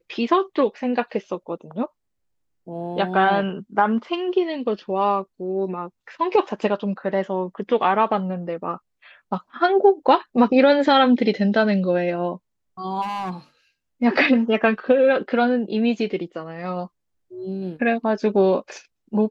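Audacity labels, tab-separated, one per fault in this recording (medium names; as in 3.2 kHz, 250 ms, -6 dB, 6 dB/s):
13.010000	13.310000	clipped -24 dBFS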